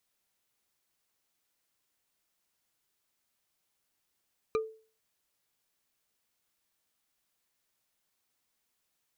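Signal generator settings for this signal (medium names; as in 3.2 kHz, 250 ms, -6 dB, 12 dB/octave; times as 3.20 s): wood hit bar, lowest mode 441 Hz, decay 0.40 s, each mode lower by 5.5 dB, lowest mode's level -23.5 dB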